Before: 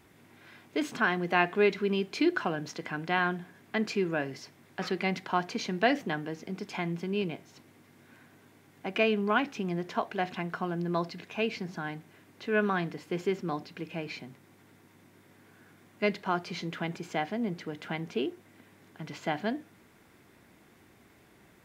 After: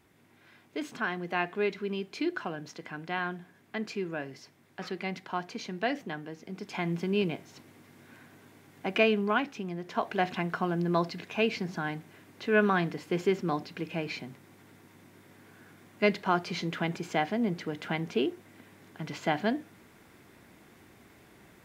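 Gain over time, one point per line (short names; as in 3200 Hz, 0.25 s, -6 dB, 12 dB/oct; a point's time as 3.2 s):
6.41 s -5 dB
6.97 s +3 dB
8.93 s +3 dB
9.79 s -5 dB
10.09 s +3 dB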